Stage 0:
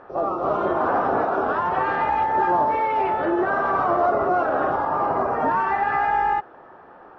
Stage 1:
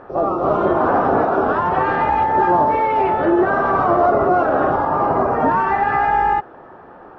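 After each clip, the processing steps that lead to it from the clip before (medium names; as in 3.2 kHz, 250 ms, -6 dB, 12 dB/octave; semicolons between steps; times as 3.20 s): bass shelf 420 Hz +7 dB; trim +3 dB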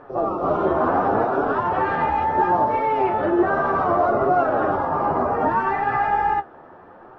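flange 0.69 Hz, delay 6.6 ms, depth 6.9 ms, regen +41%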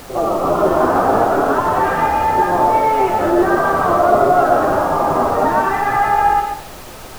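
added noise pink -41 dBFS; on a send at -3.5 dB: reverberation RT60 0.40 s, pre-delay 75 ms; on the sum: trim +4 dB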